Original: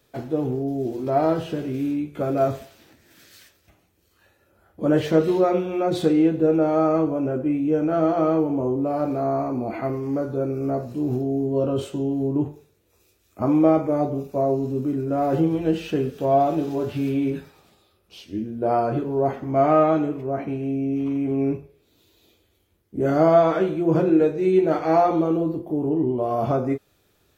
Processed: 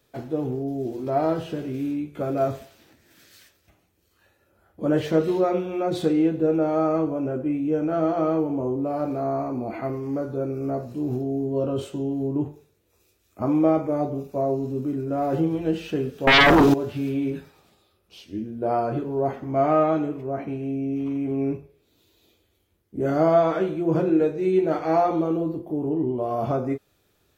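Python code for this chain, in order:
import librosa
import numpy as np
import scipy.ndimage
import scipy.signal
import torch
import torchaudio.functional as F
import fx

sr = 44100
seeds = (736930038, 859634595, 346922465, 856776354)

y = fx.fold_sine(x, sr, drive_db=14, ceiling_db=-8.5, at=(16.27, 16.74))
y = F.gain(torch.from_numpy(y), -2.5).numpy()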